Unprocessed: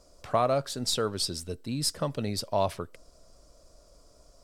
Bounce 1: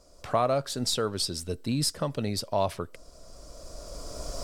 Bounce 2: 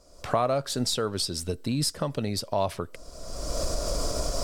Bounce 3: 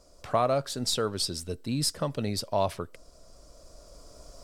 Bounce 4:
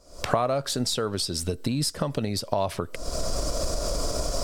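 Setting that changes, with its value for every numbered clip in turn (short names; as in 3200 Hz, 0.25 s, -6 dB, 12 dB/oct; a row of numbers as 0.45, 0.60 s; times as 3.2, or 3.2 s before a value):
recorder AGC, rising by: 13, 34, 5.3, 85 dB/s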